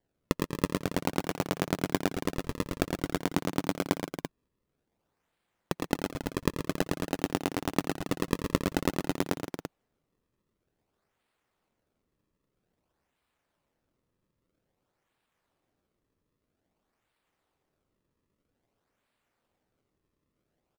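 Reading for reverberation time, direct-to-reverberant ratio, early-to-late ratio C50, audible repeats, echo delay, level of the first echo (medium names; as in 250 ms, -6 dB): no reverb, no reverb, no reverb, 4, 86 ms, -12.5 dB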